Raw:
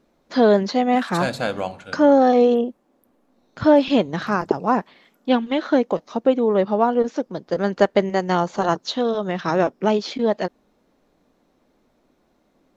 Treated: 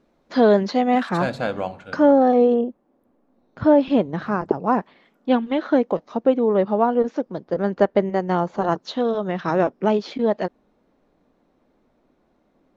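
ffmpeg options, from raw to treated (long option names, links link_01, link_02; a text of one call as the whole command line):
ffmpeg -i in.wav -af "asetnsamples=nb_out_samples=441:pad=0,asendcmd='1.09 lowpass f 2200;2.11 lowpass f 1100;4.66 lowpass f 2000;7.44 lowpass f 1200;8.72 lowpass f 2200',lowpass=frequency=4200:poles=1" out.wav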